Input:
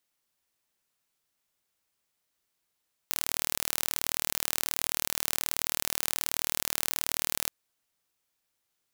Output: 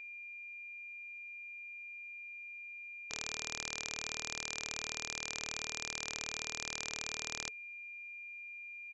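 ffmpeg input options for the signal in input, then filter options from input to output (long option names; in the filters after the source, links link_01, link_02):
-f lavfi -i "aevalsrc='0.841*eq(mod(n,1140),0)':duration=4.38:sample_rate=44100"
-af "bandreject=frequency=440:width=12,aeval=exprs='val(0)+0.00562*sin(2*PI*2400*n/s)':channel_layout=same,aresample=16000,asoftclip=type=tanh:threshold=-19.5dB,aresample=44100"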